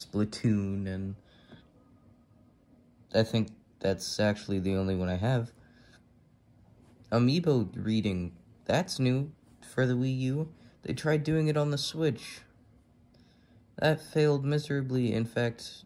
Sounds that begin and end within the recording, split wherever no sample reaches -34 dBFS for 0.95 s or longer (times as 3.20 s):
3.14–5.45 s
7.12–12.33 s